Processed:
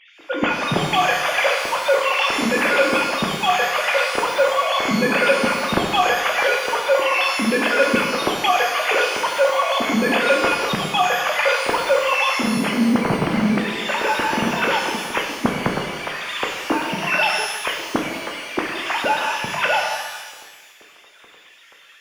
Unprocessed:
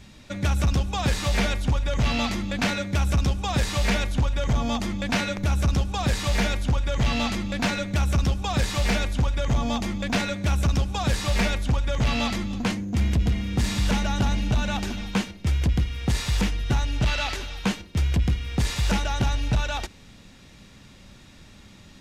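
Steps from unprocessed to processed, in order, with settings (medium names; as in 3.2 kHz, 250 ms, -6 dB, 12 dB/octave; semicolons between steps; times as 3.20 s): formants replaced by sine waves; pitch-shifted reverb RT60 1.3 s, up +12 st, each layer -8 dB, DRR 0 dB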